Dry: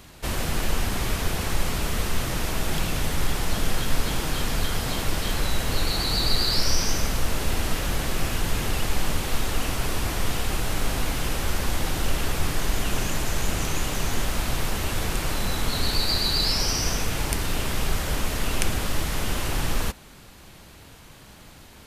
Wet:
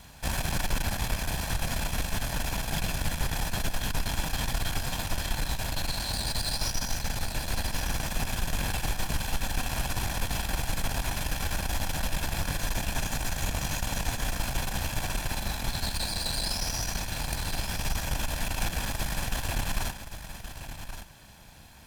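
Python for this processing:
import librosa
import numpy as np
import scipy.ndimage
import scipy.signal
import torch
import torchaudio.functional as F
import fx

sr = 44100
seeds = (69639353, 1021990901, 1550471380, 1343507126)

p1 = fx.lower_of_two(x, sr, delay_ms=1.2)
p2 = fx.tube_stage(p1, sr, drive_db=20.0, bias=0.7)
p3 = fx.rider(p2, sr, range_db=10, speed_s=2.0)
y = p3 + fx.echo_single(p3, sr, ms=1122, db=-10.5, dry=0)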